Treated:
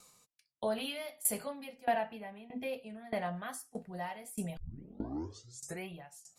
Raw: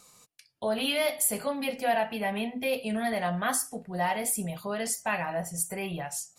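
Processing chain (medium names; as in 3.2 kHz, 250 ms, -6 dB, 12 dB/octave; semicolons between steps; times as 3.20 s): 1.85–3.36 s: treble shelf 3.1 kHz -8.5 dB; 4.57 s: tape start 1.31 s; sawtooth tremolo in dB decaying 1.6 Hz, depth 20 dB; trim -2.5 dB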